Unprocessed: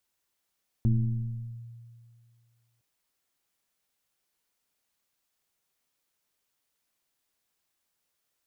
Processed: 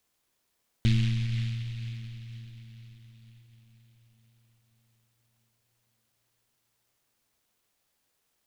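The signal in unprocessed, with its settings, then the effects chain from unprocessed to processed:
FM tone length 1.96 s, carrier 117 Hz, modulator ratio 0.9, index 0.86, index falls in 0.82 s linear, decay 2.14 s, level -18.5 dB
in parallel at -2 dB: compression, threshold -36 dBFS; on the sum: echo that smears into a reverb 472 ms, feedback 57%, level -15 dB; delay time shaken by noise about 2.8 kHz, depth 0.19 ms

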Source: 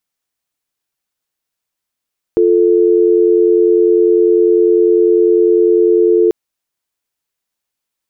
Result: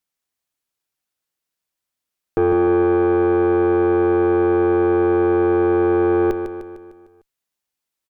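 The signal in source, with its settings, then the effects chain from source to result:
call progress tone dial tone, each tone -10 dBFS 3.94 s
valve stage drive 12 dB, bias 0.7; on a send: feedback delay 151 ms, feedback 52%, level -8 dB

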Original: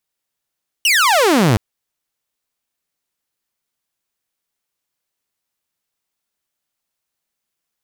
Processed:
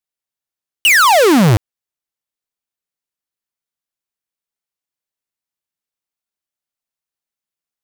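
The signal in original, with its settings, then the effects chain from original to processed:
laser zap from 3 kHz, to 97 Hz, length 0.72 s saw, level -8 dB
waveshaping leveller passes 5

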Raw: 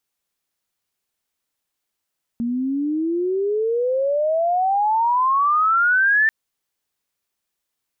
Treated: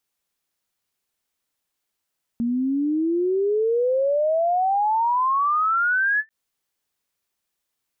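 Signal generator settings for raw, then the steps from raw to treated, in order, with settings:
gliding synth tone sine, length 3.89 s, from 231 Hz, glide +35.5 st, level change +7 dB, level -13 dB
peak limiter -17.5 dBFS; endings held to a fixed fall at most 580 dB/s

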